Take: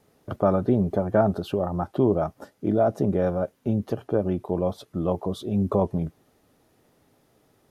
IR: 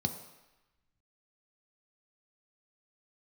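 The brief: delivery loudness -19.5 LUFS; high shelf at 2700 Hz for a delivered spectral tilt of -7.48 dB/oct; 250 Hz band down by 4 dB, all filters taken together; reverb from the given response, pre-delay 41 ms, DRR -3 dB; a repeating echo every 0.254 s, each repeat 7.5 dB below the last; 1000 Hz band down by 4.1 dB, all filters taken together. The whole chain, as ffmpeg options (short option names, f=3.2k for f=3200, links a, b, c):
-filter_complex "[0:a]equalizer=f=250:t=o:g=-5.5,equalizer=f=1k:t=o:g=-7,highshelf=f=2.7k:g=6.5,aecho=1:1:254|508|762|1016|1270:0.422|0.177|0.0744|0.0312|0.0131,asplit=2[a][b];[1:a]atrim=start_sample=2205,adelay=41[c];[b][c]afir=irnorm=-1:irlink=0,volume=-0.5dB[d];[a][d]amix=inputs=2:normalize=0,volume=-3dB"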